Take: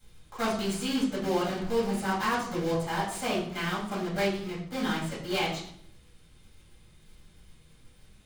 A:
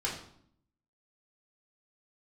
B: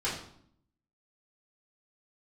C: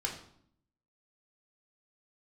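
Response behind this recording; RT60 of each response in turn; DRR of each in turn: B; 0.65, 0.65, 0.65 s; -5.0, -9.0, -1.0 dB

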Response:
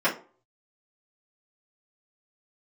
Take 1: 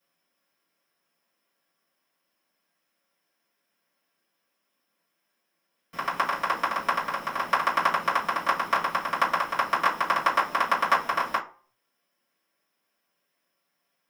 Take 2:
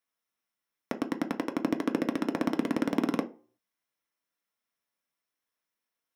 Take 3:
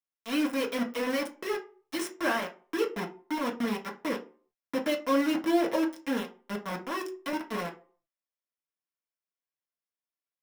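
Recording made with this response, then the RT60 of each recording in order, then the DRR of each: 1; 0.40, 0.40, 0.40 s; -11.0, 5.0, -1.5 dB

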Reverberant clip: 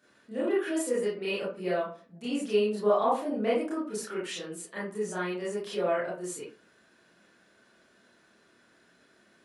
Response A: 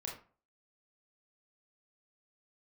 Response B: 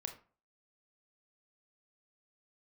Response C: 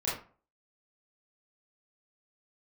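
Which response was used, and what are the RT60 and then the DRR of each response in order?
C; 0.40, 0.40, 0.40 s; -2.0, 5.0, -9.0 dB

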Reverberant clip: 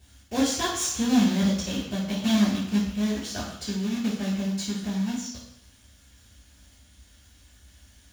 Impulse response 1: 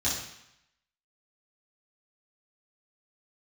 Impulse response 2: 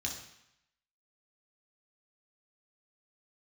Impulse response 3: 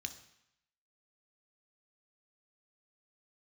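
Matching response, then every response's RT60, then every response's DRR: 1; 0.80, 0.80, 0.80 s; -10.5, -1.5, 7.0 dB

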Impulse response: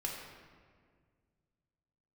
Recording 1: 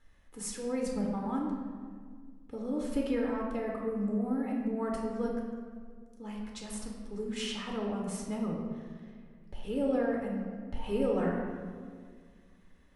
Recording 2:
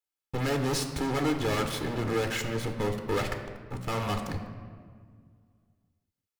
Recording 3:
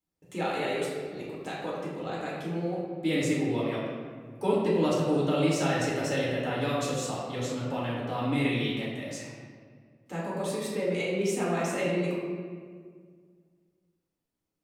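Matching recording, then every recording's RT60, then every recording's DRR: 1; 1.9, 1.9, 1.9 s; -2.0, 5.0, -7.0 dB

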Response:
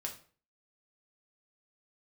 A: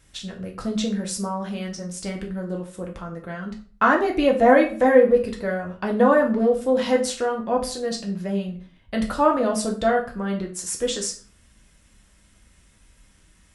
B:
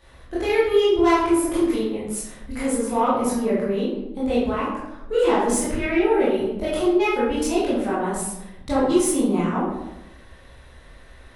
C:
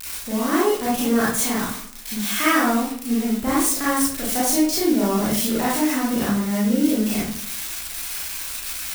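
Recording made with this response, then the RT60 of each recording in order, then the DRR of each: A; 0.45, 0.95, 0.55 s; 0.5, -9.5, -8.0 dB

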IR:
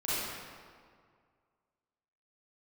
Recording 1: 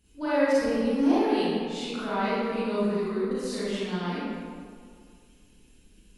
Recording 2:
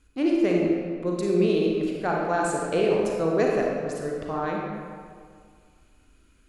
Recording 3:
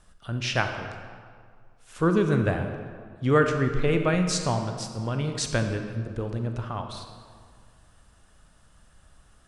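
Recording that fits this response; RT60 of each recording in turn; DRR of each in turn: 1; 2.0, 2.0, 2.0 s; -12.0, -2.0, 5.0 dB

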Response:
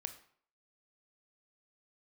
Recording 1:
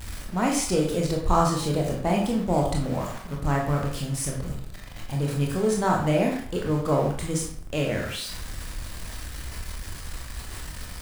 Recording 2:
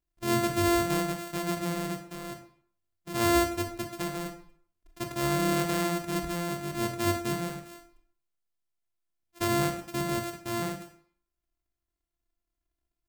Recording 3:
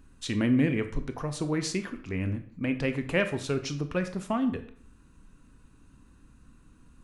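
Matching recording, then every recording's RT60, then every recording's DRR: 3; 0.55, 0.55, 0.55 s; -1.0, 4.0, 8.5 dB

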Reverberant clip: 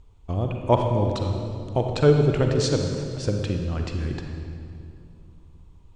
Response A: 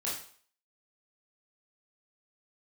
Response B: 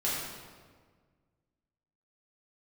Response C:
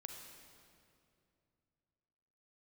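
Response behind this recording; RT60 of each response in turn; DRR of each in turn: C; 0.50, 1.6, 2.5 s; -7.0, -8.5, 3.0 dB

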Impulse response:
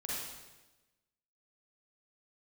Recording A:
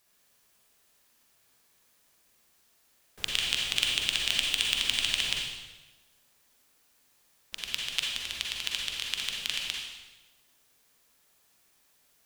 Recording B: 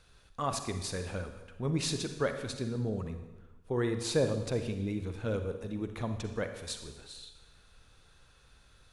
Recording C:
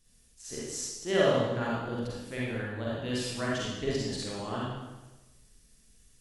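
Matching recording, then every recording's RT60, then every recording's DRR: C; 1.1, 1.1, 1.1 s; -1.5, 7.0, -7.0 dB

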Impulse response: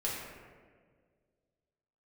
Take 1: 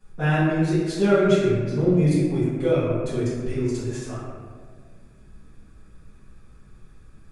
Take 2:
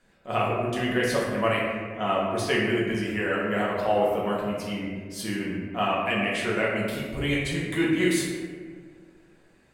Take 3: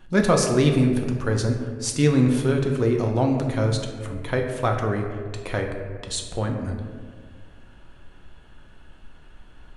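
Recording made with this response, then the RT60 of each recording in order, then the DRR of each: 2; 1.8, 1.8, 1.8 s; -14.0, -5.5, 1.5 dB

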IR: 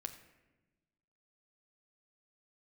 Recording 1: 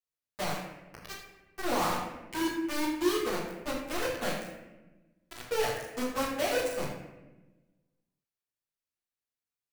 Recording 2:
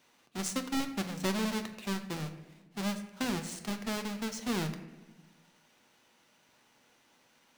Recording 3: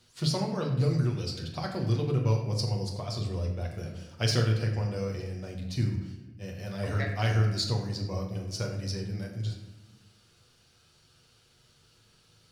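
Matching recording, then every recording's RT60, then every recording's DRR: 2; 1.1, 1.1, 1.1 s; -10.5, 6.5, -0.5 dB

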